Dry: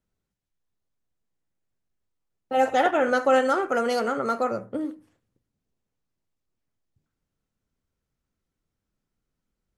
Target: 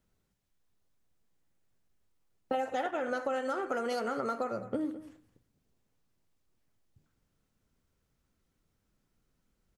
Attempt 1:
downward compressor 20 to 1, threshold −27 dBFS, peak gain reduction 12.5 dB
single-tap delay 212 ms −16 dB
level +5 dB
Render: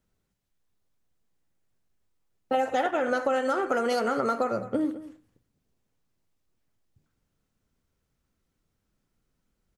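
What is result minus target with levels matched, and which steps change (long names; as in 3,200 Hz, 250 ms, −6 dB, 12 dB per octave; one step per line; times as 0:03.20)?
downward compressor: peak gain reduction −7 dB
change: downward compressor 20 to 1, threshold −34.5 dBFS, peak gain reduction 20 dB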